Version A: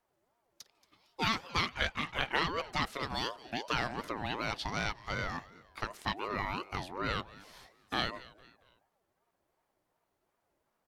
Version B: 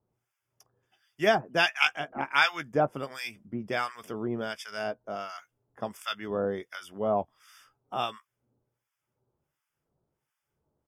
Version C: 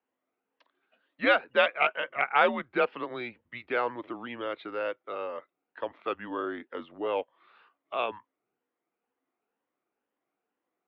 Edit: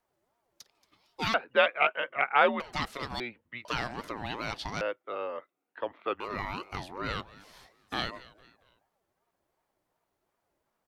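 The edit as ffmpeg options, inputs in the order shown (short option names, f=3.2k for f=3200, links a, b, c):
-filter_complex "[2:a]asplit=3[a][b][c];[0:a]asplit=4[d][e][f][g];[d]atrim=end=1.342[h];[a]atrim=start=1.338:end=2.602[i];[e]atrim=start=2.598:end=3.202[j];[b]atrim=start=3.198:end=3.652[k];[f]atrim=start=3.648:end=4.812[l];[c]atrim=start=4.808:end=6.202[m];[g]atrim=start=6.198[n];[h][i]acrossfade=d=0.004:c1=hsin:c2=hsin[o];[o][j]acrossfade=d=0.004:c1=hsin:c2=hsin[p];[p][k]acrossfade=d=0.004:c1=hsin:c2=hsin[q];[q][l]acrossfade=d=0.004:c1=hsin:c2=hsin[r];[r][m]acrossfade=d=0.004:c1=hsin:c2=hsin[s];[s][n]acrossfade=d=0.004:c1=hsin:c2=hsin"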